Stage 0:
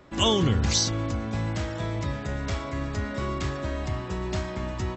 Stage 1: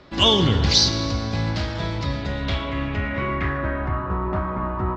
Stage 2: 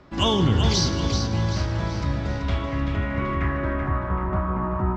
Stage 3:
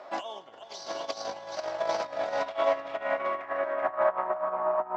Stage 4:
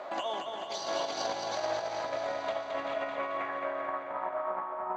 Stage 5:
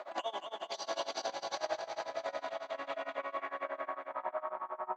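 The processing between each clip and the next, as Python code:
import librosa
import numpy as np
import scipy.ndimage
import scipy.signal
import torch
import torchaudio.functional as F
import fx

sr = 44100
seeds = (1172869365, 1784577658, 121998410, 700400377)

y1 = scipy.signal.medfilt(x, 5)
y1 = fx.rev_plate(y1, sr, seeds[0], rt60_s=2.4, hf_ratio=0.75, predelay_ms=0, drr_db=8.5)
y1 = fx.filter_sweep_lowpass(y1, sr, from_hz=4600.0, to_hz=1200.0, start_s=2.14, end_s=4.17, q=3.0)
y1 = y1 * 10.0 ** (3.5 / 20.0)
y2 = fx.graphic_eq(y1, sr, hz=(500, 2000, 4000), db=(-4, -3, -10))
y2 = fx.echo_feedback(y2, sr, ms=384, feedback_pct=45, wet_db=-7.0)
y3 = fx.over_compress(y2, sr, threshold_db=-28.0, ratio=-0.5)
y3 = fx.highpass_res(y3, sr, hz=660.0, q=5.3)
y3 = y3 * 10.0 ** (-3.0 / 20.0)
y4 = fx.notch(y3, sr, hz=5300.0, q=6.5)
y4 = fx.over_compress(y4, sr, threshold_db=-35.0, ratio=-1.0)
y4 = fx.echo_feedback(y4, sr, ms=219, feedback_pct=59, wet_db=-5.0)
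y5 = fx.highpass(y4, sr, hz=370.0, slope=6)
y5 = y5 * (1.0 - 0.94 / 2.0 + 0.94 / 2.0 * np.cos(2.0 * np.pi * 11.0 * (np.arange(len(y5)) / sr)))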